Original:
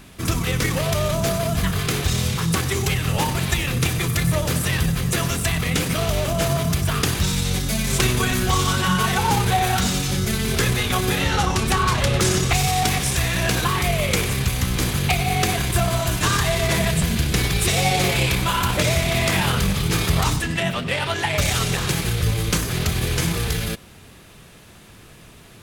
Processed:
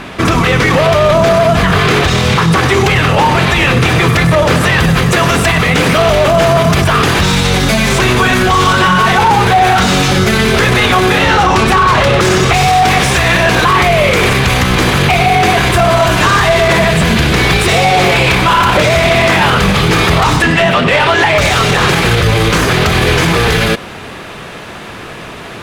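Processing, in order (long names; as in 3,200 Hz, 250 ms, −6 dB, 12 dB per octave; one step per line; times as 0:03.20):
high-shelf EQ 7,100 Hz −9.5 dB, from 0:04.79 −4 dB
mid-hump overdrive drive 17 dB, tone 1,400 Hz, clips at −9 dBFS
boost into a limiter +16 dB
level −1 dB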